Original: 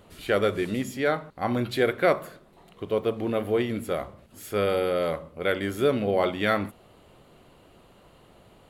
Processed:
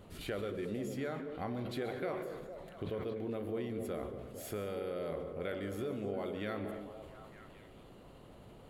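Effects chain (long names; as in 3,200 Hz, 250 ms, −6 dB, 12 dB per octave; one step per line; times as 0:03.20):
low-shelf EQ 440 Hz +6.5 dB
downward compressor 6 to 1, threshold −32 dBFS, peak gain reduction 17 dB
echo through a band-pass that steps 227 ms, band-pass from 350 Hz, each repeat 0.7 octaves, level −4 dB
on a send at −12.5 dB: convolution reverb RT60 0.85 s, pre-delay 113 ms
on the sum: level that may fall only so fast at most 36 dB per second
level −6 dB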